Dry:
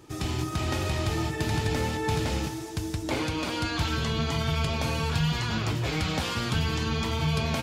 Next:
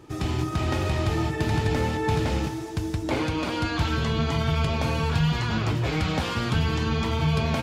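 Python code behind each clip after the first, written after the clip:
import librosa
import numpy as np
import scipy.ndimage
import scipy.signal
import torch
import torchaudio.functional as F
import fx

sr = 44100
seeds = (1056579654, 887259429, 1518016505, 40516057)

y = fx.high_shelf(x, sr, hz=3600.0, db=-8.5)
y = y * 10.0 ** (3.5 / 20.0)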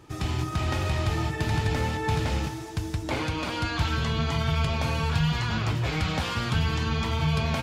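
y = fx.peak_eq(x, sr, hz=340.0, db=-5.5, octaves=1.8)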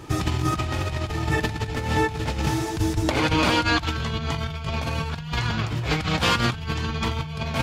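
y = fx.over_compress(x, sr, threshold_db=-30.0, ratio=-0.5)
y = y * 10.0 ** (6.5 / 20.0)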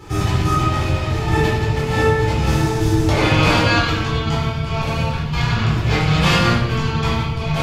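y = fx.room_shoebox(x, sr, seeds[0], volume_m3=530.0, walls='mixed', distance_m=4.1)
y = y * 10.0 ** (-4.0 / 20.0)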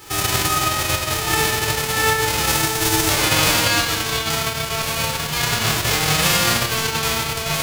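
y = fx.envelope_flatten(x, sr, power=0.3)
y = y * 10.0 ** (-2.5 / 20.0)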